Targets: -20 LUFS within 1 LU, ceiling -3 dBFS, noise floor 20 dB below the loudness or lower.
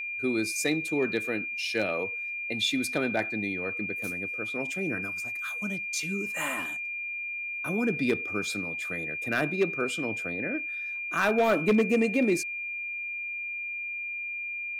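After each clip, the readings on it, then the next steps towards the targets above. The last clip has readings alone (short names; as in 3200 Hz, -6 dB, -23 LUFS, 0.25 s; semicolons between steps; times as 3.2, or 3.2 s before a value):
clipped 0.2%; flat tops at -17.0 dBFS; steady tone 2400 Hz; tone level -32 dBFS; loudness -29.0 LUFS; peak -17.0 dBFS; loudness target -20.0 LUFS
-> clip repair -17 dBFS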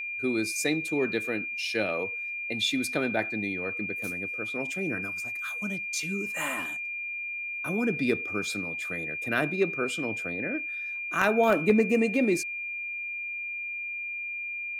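clipped 0.0%; steady tone 2400 Hz; tone level -32 dBFS
-> notch 2400 Hz, Q 30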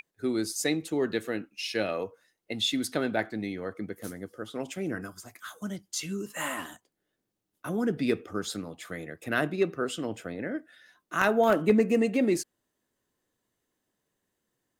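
steady tone none; loudness -30.0 LUFS; peak -8.0 dBFS; loudness target -20.0 LUFS
-> gain +10 dB; limiter -3 dBFS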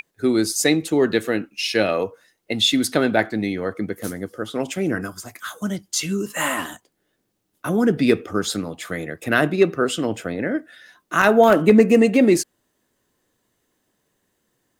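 loudness -20.5 LUFS; peak -3.0 dBFS; noise floor -72 dBFS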